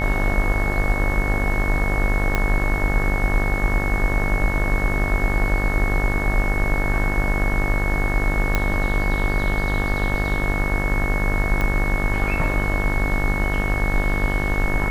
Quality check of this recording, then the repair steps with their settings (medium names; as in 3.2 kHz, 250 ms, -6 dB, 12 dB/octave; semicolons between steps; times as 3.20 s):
buzz 50 Hz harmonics 38 -25 dBFS
whine 2.2 kHz -26 dBFS
2.35 s: pop -7 dBFS
8.55 s: pop -6 dBFS
11.61 s: pop -11 dBFS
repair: de-click; band-stop 2.2 kHz, Q 30; de-hum 50 Hz, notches 38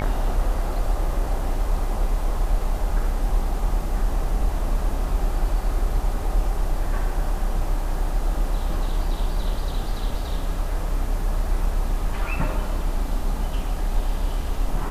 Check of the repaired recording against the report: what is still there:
2.35 s: pop
11.61 s: pop